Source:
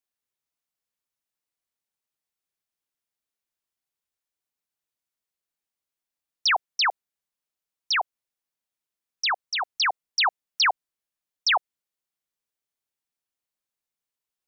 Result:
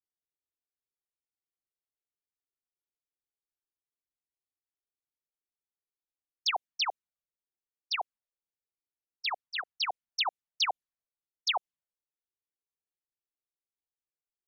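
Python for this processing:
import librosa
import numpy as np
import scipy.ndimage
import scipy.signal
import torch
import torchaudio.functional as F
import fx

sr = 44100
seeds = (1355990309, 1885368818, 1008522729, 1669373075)

y = fx.env_lowpass(x, sr, base_hz=540.0, full_db=-22.5)
y = fx.env_flanger(y, sr, rest_ms=2.5, full_db=-21.0)
y = y * librosa.db_to_amplitude(-4.0)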